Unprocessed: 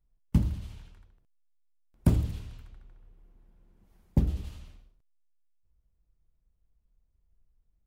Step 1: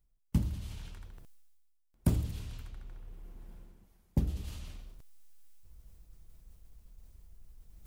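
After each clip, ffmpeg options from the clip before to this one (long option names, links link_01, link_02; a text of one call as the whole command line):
ffmpeg -i in.wav -af "highshelf=frequency=4300:gain=7.5,areverse,acompressor=mode=upward:threshold=-29dB:ratio=2.5,areverse,volume=-5dB" out.wav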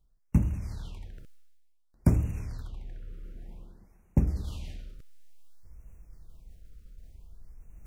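ffmpeg -i in.wav -af "highshelf=frequency=6200:gain=-10,afftfilt=real='re*(1-between(b*sr/1024,830*pow(4100/830,0.5+0.5*sin(2*PI*0.55*pts/sr))/1.41,830*pow(4100/830,0.5+0.5*sin(2*PI*0.55*pts/sr))*1.41))':imag='im*(1-between(b*sr/1024,830*pow(4100/830,0.5+0.5*sin(2*PI*0.55*pts/sr))/1.41,830*pow(4100/830,0.5+0.5*sin(2*PI*0.55*pts/sr))*1.41))':win_size=1024:overlap=0.75,volume=5.5dB" out.wav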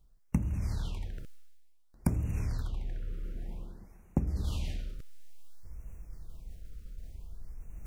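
ffmpeg -i in.wav -af "acompressor=threshold=-30dB:ratio=12,volume=5dB" out.wav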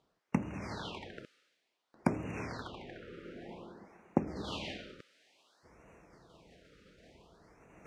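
ffmpeg -i in.wav -af "highpass=330,lowpass=3500,volume=8.5dB" out.wav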